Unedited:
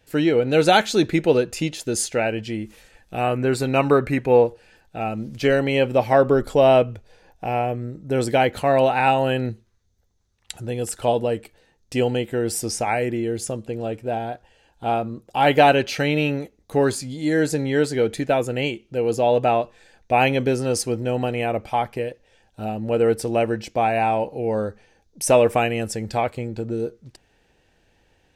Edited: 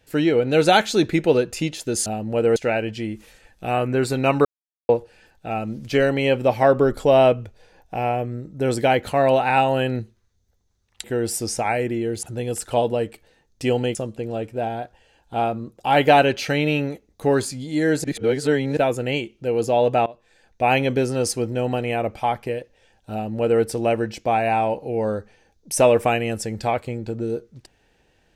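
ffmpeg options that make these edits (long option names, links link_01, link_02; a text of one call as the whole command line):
ffmpeg -i in.wav -filter_complex "[0:a]asplit=11[link_01][link_02][link_03][link_04][link_05][link_06][link_07][link_08][link_09][link_10][link_11];[link_01]atrim=end=2.062[link_12];[link_02]atrim=start=22.618:end=23.122[link_13];[link_03]atrim=start=2.058:end=3.95,asetpts=PTS-STARTPTS,afade=type=out:start_time=1.888:duration=0.004:curve=hsin[link_14];[link_04]atrim=start=3.95:end=4.39,asetpts=PTS-STARTPTS,volume=0[link_15];[link_05]atrim=start=4.39:end=10.542,asetpts=PTS-STARTPTS,afade=type=in:duration=0.004:curve=hsin[link_16];[link_06]atrim=start=12.258:end=13.452[link_17];[link_07]atrim=start=10.538:end=12.262[link_18];[link_08]atrim=start=13.448:end=17.542[link_19];[link_09]atrim=start=17.538:end=18.272,asetpts=PTS-STARTPTS,areverse[link_20];[link_10]atrim=start=18.268:end=19.56,asetpts=PTS-STARTPTS,afade=type=out:start_time=1.288:duration=0.004:curve=hsin:silence=0.0841395[link_21];[link_11]atrim=start=19.56,asetpts=PTS-STARTPTS,afade=type=in:duration=0.89:curve=qsin:silence=0.0841395[link_22];[link_12][link_13]acrossfade=duration=0.004:curve1=hsin:curve2=hsin[link_23];[link_14][link_15][link_16]concat=n=3:v=0:a=1[link_24];[link_23][link_24]acrossfade=duration=0.004:curve1=hsin:curve2=hsin[link_25];[link_25][link_17]acrossfade=duration=0.004:curve1=hsin:curve2=hsin[link_26];[link_26][link_18]acrossfade=duration=0.004:curve1=hsin:curve2=hsin[link_27];[link_27][link_19]acrossfade=duration=0.004:curve1=hsin:curve2=hsin[link_28];[link_28][link_20]acrossfade=duration=0.004:curve1=hsin:curve2=hsin[link_29];[link_21][link_22]concat=n=2:v=0:a=1[link_30];[link_29][link_30]acrossfade=duration=0.004:curve1=hsin:curve2=hsin" out.wav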